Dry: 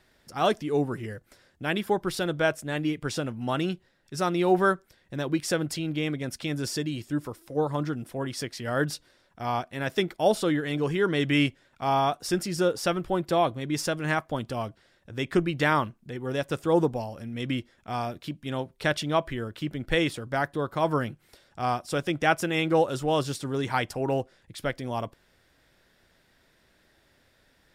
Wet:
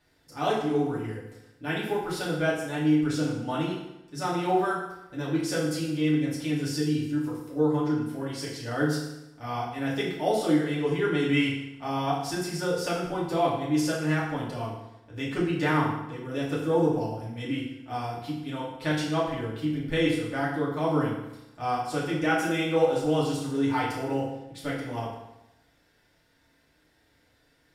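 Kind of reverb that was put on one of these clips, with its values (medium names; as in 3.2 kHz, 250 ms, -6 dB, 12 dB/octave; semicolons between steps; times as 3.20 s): FDN reverb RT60 0.92 s, low-frequency decay 1.05×, high-frequency decay 0.85×, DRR -6.5 dB; trim -9 dB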